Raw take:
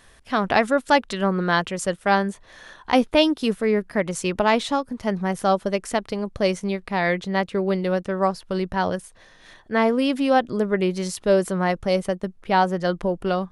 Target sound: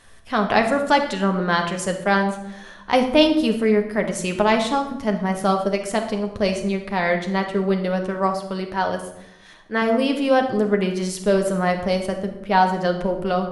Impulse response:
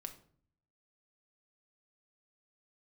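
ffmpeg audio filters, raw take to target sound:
-filter_complex "[0:a]asettb=1/sr,asplit=3[s0][s1][s2];[s0]atrim=end=8.264[s3];[s1]atrim=start=8.26:end=9.82,asetpts=PTS-STARTPTS,afade=t=in:d=0.004:c=qsin,afade=t=out:st=1.556:d=0.004:c=qsin,lowshelf=f=180:g=-9[s4];[s2]atrim=start=9.816[s5];[s3][s4]acrossfade=d=0.004:c1=hsin:c2=qsin[s6];[s6][s5]acrossfade=d=0.004:c1=qsin:c2=hsin[s7];[1:a]atrim=start_sample=2205,asetrate=23373,aresample=44100[s8];[s7][s8]afir=irnorm=-1:irlink=0,volume=1.19"

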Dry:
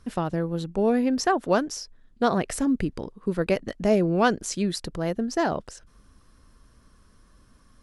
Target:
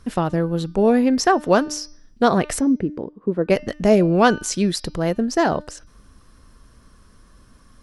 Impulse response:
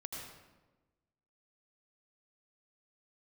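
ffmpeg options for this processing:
-filter_complex "[0:a]asplit=3[s0][s1][s2];[s0]afade=t=out:st=2.59:d=0.02[s3];[s1]bandpass=f=360:t=q:w=0.74:csg=0,afade=t=in:st=2.59:d=0.02,afade=t=out:st=3.49:d=0.02[s4];[s2]afade=t=in:st=3.49:d=0.02[s5];[s3][s4][s5]amix=inputs=3:normalize=0,bandreject=f=300.2:t=h:w=4,bandreject=f=600.4:t=h:w=4,bandreject=f=900.6:t=h:w=4,bandreject=f=1200.8:t=h:w=4,bandreject=f=1501:t=h:w=4,bandreject=f=1801.2:t=h:w=4,bandreject=f=2101.4:t=h:w=4,bandreject=f=2401.6:t=h:w=4,bandreject=f=2701.8:t=h:w=4,bandreject=f=3002:t=h:w=4,bandreject=f=3302.2:t=h:w=4,bandreject=f=3602.4:t=h:w=4,bandreject=f=3902.6:t=h:w=4,bandreject=f=4202.8:t=h:w=4,bandreject=f=4503:t=h:w=4,bandreject=f=4803.2:t=h:w=4,bandreject=f=5103.4:t=h:w=4,bandreject=f=5403.6:t=h:w=4,bandreject=f=5703.8:t=h:w=4,bandreject=f=6004:t=h:w=4,volume=2"

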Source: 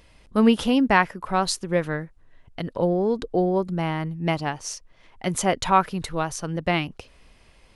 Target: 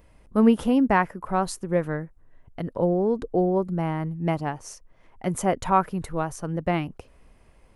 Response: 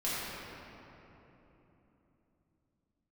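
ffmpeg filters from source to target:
-af "equalizer=f=4000:w=0.66:g=-13"

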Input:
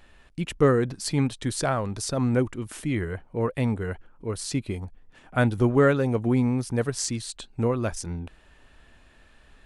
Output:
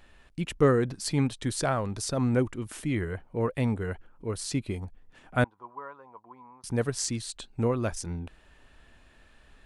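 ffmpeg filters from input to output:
-filter_complex "[0:a]asettb=1/sr,asplit=3[s0][s1][s2];[s0]atrim=end=5.444[s3];[s1]atrim=start=5.44:end=6.64,asetpts=PTS-STARTPTS,afade=t=in:d=0.004:c=qsin,afade=t=out:st=1.196:d=0.004:c=qsin,bandpass=f=1000:t=q:w=11:csg=0[s4];[s2]atrim=start=6.636[s5];[s3][s4]acrossfade=d=0.004:c1=hsin:c2=qsin[s6];[s6][s5]acrossfade=d=0.004:c1=qsin:c2=hsin,volume=0.794"

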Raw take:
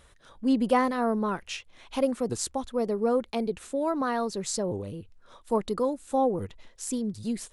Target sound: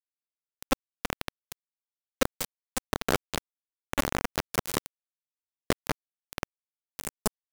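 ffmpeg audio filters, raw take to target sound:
-filter_complex "[0:a]acompressor=mode=upward:threshold=0.0501:ratio=2.5,equalizer=f=160:t=o:w=0.67:g=-6,equalizer=f=400:t=o:w=0.67:g=5,equalizer=f=1000:t=o:w=0.67:g=-6,equalizer=f=2500:t=o:w=0.67:g=-7,asplit=2[s0][s1];[s1]adelay=229,lowpass=f=3600:p=1,volume=0.126,asplit=2[s2][s3];[s3]adelay=229,lowpass=f=3600:p=1,volume=0.54,asplit=2[s4][s5];[s5]adelay=229,lowpass=f=3600:p=1,volume=0.54,asplit=2[s6][s7];[s7]adelay=229,lowpass=f=3600:p=1,volume=0.54,asplit=2[s8][s9];[s9]adelay=229,lowpass=f=3600:p=1,volume=0.54[s10];[s2][s4][s6][s8][s10]amix=inputs=5:normalize=0[s11];[s0][s11]amix=inputs=2:normalize=0,acompressor=threshold=0.0501:ratio=3,asoftclip=type=hard:threshold=0.0501,asplit=2[s12][s13];[s13]aecho=0:1:190|380|570|760:0.447|0.134|0.0402|0.0121[s14];[s12][s14]amix=inputs=2:normalize=0,acrusher=bits=3:mix=0:aa=0.000001,lowshelf=f=470:g=5,volume=1.58"

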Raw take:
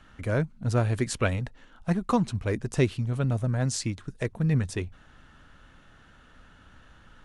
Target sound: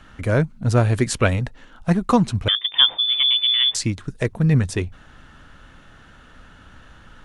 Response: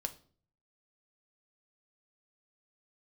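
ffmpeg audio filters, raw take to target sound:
-filter_complex "[0:a]asettb=1/sr,asplit=3[s0][s1][s2];[s0]atrim=end=2.484[s3];[s1]atrim=start=2.48:end=3.75,asetpts=PTS-STARTPTS,afade=t=in:d=0.004:c=qsin,afade=t=out:st=1.266:d=0.004:c=qsin,lowpass=f=3100:t=q:w=0.5098,lowpass=f=3100:t=q:w=0.6013,lowpass=f=3100:t=q:w=0.9,lowpass=f=3100:t=q:w=2.563,afreqshift=-3600[s4];[s2]atrim=start=3.746[s5];[s3][s4]acrossfade=d=0.004:c1=hsin:c2=qsin[s6];[s6][s5]acrossfade=d=0.004:c1=qsin:c2=hsin,volume=2.37"

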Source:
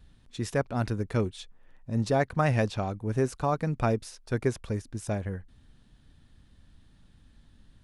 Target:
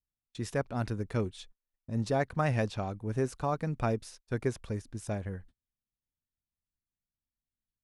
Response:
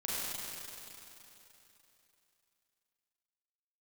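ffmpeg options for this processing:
-af "agate=range=0.0158:threshold=0.00501:ratio=16:detection=peak,volume=0.631"

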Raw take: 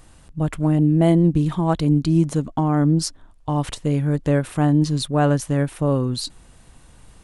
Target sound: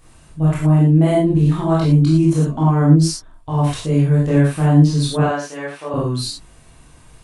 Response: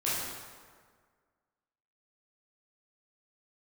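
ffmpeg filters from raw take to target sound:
-filter_complex "[0:a]asettb=1/sr,asplit=3[s0][s1][s2];[s0]atrim=end=5.194[s3];[s1]atrim=start=5.19:end=5.94,asetpts=PTS-STARTPTS,afade=t=in:d=0.004:c=qsin,afade=t=out:st=0.746:d=0.004:c=qsin,highpass=630,lowpass=5700[s4];[s2]atrim=start=5.936[s5];[s3][s4]acrossfade=d=0.004:c1=hsin:c2=qsin[s6];[s6][s5]acrossfade=d=0.004:c1=qsin:c2=hsin[s7];[1:a]atrim=start_sample=2205,afade=t=out:st=0.17:d=0.01,atrim=end_sample=7938[s8];[s7][s8]afir=irnorm=-1:irlink=0,volume=0.708"

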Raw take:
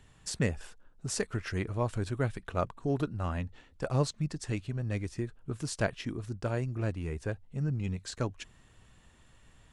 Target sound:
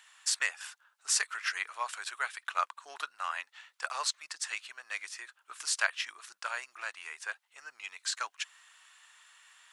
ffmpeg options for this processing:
-af "highpass=f=1100:w=0.5412,highpass=f=1100:w=1.3066,volume=2.51"

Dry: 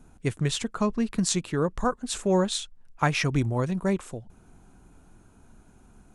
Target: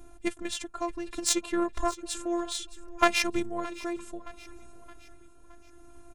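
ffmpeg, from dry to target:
-filter_complex "[0:a]equalizer=f=620:t=o:w=0.27:g=4,asplit=2[s0][s1];[s1]acompressor=threshold=0.0178:ratio=6,volume=1.26[s2];[s0][s2]amix=inputs=2:normalize=0,tremolo=f=0.65:d=0.49,afftfilt=real='hypot(re,im)*cos(PI*b)':imag='0':win_size=512:overlap=0.75,aeval=exprs='0.316*(cos(1*acos(clip(val(0)/0.316,-1,1)))-cos(1*PI/2))+0.0501*(cos(3*acos(clip(val(0)/0.316,-1,1)))-cos(3*PI/2))':c=same,asplit=2[s3][s4];[s4]aecho=0:1:619|1238|1857|2476:0.126|0.0592|0.0278|0.0131[s5];[s3][s5]amix=inputs=2:normalize=0,volume=1.88"

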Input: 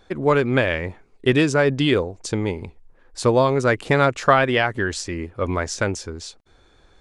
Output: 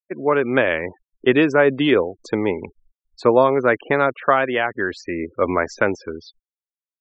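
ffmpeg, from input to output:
-filter_complex "[0:a]dynaudnorm=f=120:g=7:m=2.51,acrossover=split=210 3100:gain=0.178 1 0.178[s0][s1][s2];[s0][s1][s2]amix=inputs=3:normalize=0,afftfilt=real='re*gte(hypot(re,im),0.0224)':imag='im*gte(hypot(re,im),0.0224)':win_size=1024:overlap=0.75,volume=0.891"

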